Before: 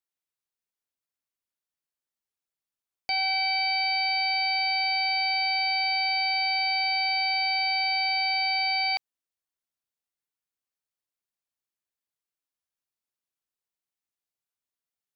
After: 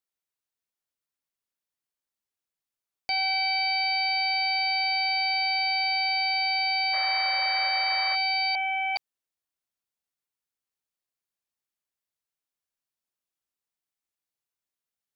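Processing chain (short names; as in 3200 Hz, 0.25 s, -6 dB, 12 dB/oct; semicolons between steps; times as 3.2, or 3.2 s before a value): 6.93–8.16 painted sound noise 530–2400 Hz -38 dBFS; 8.55–8.96 steep low-pass 3200 Hz 96 dB/oct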